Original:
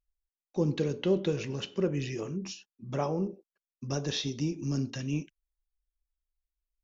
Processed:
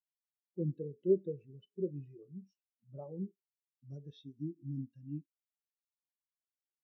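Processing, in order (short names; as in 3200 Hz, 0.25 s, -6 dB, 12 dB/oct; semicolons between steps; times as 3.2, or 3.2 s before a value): in parallel at -7.5 dB: soft clip -24.5 dBFS, distortion -14 dB; on the sum: spectral expander 2.5:1; gain -4 dB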